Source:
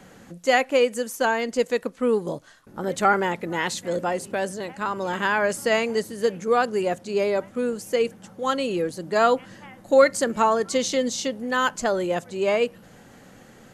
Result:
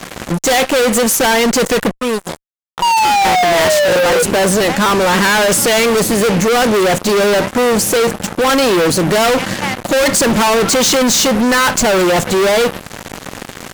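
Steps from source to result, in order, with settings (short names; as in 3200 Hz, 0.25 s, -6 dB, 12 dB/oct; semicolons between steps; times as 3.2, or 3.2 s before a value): 1.92–3.25 passive tone stack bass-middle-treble 5-5-5; 2.82–4.23 painted sound fall 480–960 Hz -24 dBFS; fuzz box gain 43 dB, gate -45 dBFS; gain +2.5 dB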